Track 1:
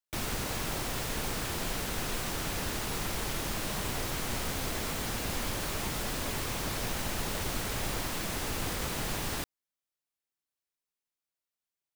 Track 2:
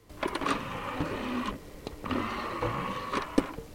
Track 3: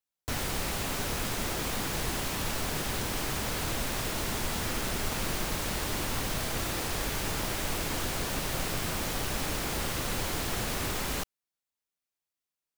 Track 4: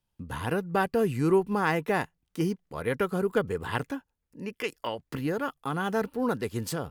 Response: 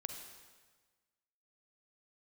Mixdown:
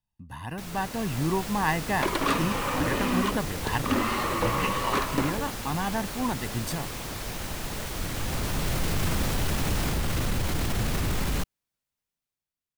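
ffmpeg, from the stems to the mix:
-filter_complex "[0:a]adelay=450,volume=-8.5dB[link_01];[1:a]asoftclip=type=tanh:threshold=-25dB,adelay=1800,volume=0dB[link_02];[2:a]bass=frequency=250:gain=10,treble=frequency=4000:gain=-2,alimiter=limit=-22.5dB:level=0:latency=1:release=11,adelay=200,volume=-3.5dB[link_03];[3:a]aecho=1:1:1.1:0.7,volume=-8.5dB,asplit=2[link_04][link_05];[link_05]apad=whole_len=572215[link_06];[link_03][link_06]sidechaincompress=threshold=-56dB:ratio=8:attack=16:release=1310[link_07];[link_01][link_02][link_07][link_04]amix=inputs=4:normalize=0,dynaudnorm=framelen=110:gausssize=17:maxgain=7dB"

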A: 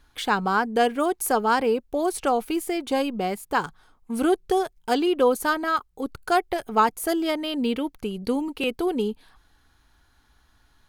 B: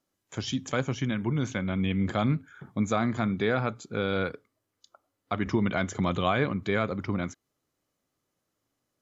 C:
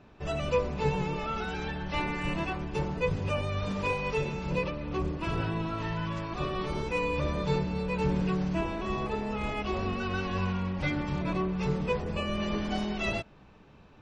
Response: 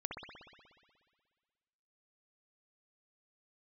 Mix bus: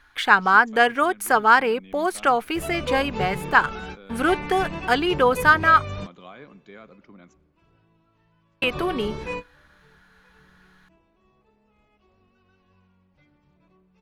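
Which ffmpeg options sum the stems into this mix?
-filter_complex "[0:a]equalizer=frequency=1700:width_type=o:width=1.9:gain=15,volume=-3.5dB,asplit=3[link_01][link_02][link_03];[link_01]atrim=end=5.86,asetpts=PTS-STARTPTS,afade=type=out:start_time=5.856:duration=0.004:curve=hsin[link_04];[link_02]atrim=start=5.86:end=8.62,asetpts=PTS-STARTPTS,volume=0[link_05];[link_03]atrim=start=8.62,asetpts=PTS-STARTPTS,afade=type=in:duration=0.004:curve=hsin[link_06];[link_04][link_05][link_06]concat=n=3:v=0:a=1,asplit=2[link_07][link_08];[1:a]highpass=frequency=160:width=0.5412,highpass=frequency=160:width=1.3066,volume=-18dB,asplit=2[link_09][link_10];[link_10]volume=-20.5dB[link_11];[2:a]adelay=2350,volume=-0.5dB[link_12];[link_08]apad=whole_len=721869[link_13];[link_12][link_13]sidechaingate=range=-31dB:threshold=-51dB:ratio=16:detection=peak[link_14];[3:a]atrim=start_sample=2205[link_15];[link_11][link_15]afir=irnorm=-1:irlink=0[link_16];[link_07][link_09][link_14][link_16]amix=inputs=4:normalize=0"

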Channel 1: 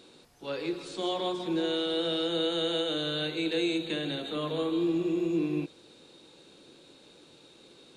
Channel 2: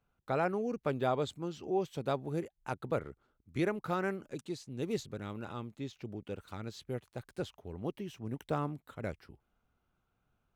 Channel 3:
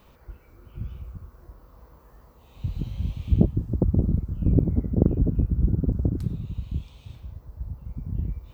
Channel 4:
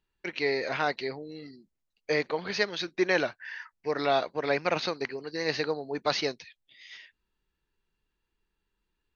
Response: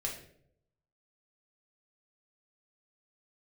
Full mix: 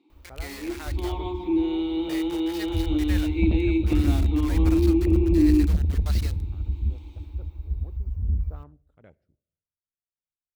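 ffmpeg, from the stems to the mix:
-filter_complex "[0:a]dynaudnorm=framelen=110:gausssize=13:maxgain=11.5dB,asplit=3[link_01][link_02][link_03];[link_01]bandpass=frequency=300:width_type=q:width=8,volume=0dB[link_04];[link_02]bandpass=frequency=870:width_type=q:width=8,volume=-6dB[link_05];[link_03]bandpass=frequency=2240:width_type=q:width=8,volume=-9dB[link_06];[link_04][link_05][link_06]amix=inputs=3:normalize=0,volume=1.5dB[link_07];[1:a]afwtdn=0.00501,volume=-15dB,asplit=2[link_08][link_09];[link_09]volume=-21dB[link_10];[2:a]lowshelf=frequency=100:width_type=q:width=3:gain=10.5,acontrast=89,adelay=100,volume=-15dB,asplit=2[link_11][link_12];[link_12]volume=-22.5dB[link_13];[3:a]acrusher=bits=4:mix=0:aa=0.000001,highpass=frequency=1100:poles=1,volume=-10.5dB,asplit=2[link_14][link_15];[link_15]volume=-19.5dB[link_16];[4:a]atrim=start_sample=2205[link_17];[link_10][link_13][link_16]amix=inputs=3:normalize=0[link_18];[link_18][link_17]afir=irnorm=-1:irlink=0[link_19];[link_07][link_08][link_11][link_14][link_19]amix=inputs=5:normalize=0"

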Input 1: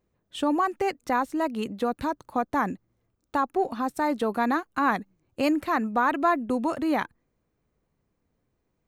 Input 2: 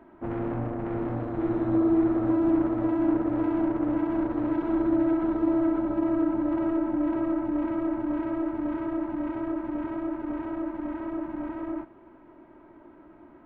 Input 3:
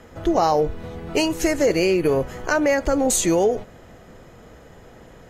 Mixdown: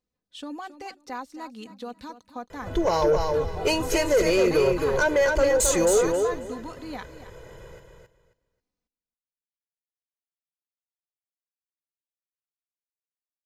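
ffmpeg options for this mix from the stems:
ffmpeg -i stem1.wav -i stem2.wav -i stem3.wav -filter_complex "[0:a]equalizer=frequency=4800:width_type=o:width=1.3:gain=12,aecho=1:1:4:0.48,volume=-13.5dB,asplit=2[link_01][link_02];[link_02]volume=-13.5dB[link_03];[2:a]aecho=1:1:2:0.97,asoftclip=type=tanh:threshold=-6.5dB,adelay=2500,volume=-4dB,asplit=2[link_04][link_05];[link_05]volume=-4.5dB[link_06];[link_03][link_06]amix=inputs=2:normalize=0,aecho=0:1:269|538|807:1|0.2|0.04[link_07];[link_01][link_04][link_07]amix=inputs=3:normalize=0,asoftclip=type=tanh:threshold=-11.5dB" out.wav

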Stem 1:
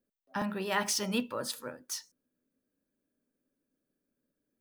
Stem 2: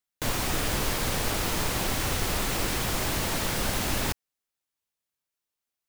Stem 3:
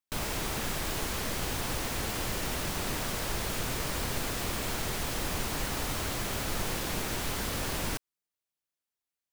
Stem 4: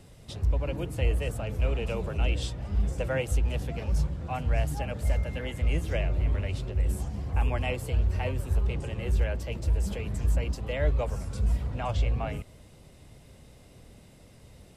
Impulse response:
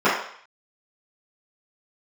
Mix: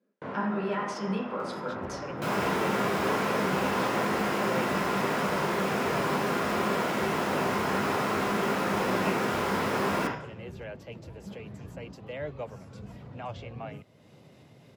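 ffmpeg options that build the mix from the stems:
-filter_complex "[0:a]lowpass=7800,acompressor=threshold=-42dB:ratio=5,volume=2dB,asplit=3[link_01][link_02][link_03];[link_02]volume=-13.5dB[link_04];[1:a]lowpass=1500,volume=-8dB,asplit=2[link_05][link_06];[link_06]volume=-21.5dB[link_07];[2:a]adelay=2100,volume=-2dB,asplit=2[link_08][link_09];[link_09]volume=-12.5dB[link_10];[3:a]equalizer=frequency=8900:width=4.5:gain=-13.5,acompressor=mode=upward:threshold=-37dB:ratio=2.5,adelay=1400,volume=-5dB[link_11];[link_03]apad=whole_len=259714[link_12];[link_05][link_12]sidechaincompress=threshold=-43dB:ratio=8:attack=16:release=934[link_13];[4:a]atrim=start_sample=2205[link_14];[link_04][link_07][link_10]amix=inputs=3:normalize=0[link_15];[link_15][link_14]afir=irnorm=-1:irlink=0[link_16];[link_01][link_13][link_08][link_11][link_16]amix=inputs=5:normalize=0,highpass=frequency=120:width=0.5412,highpass=frequency=120:width=1.3066,highshelf=frequency=4900:gain=-9"

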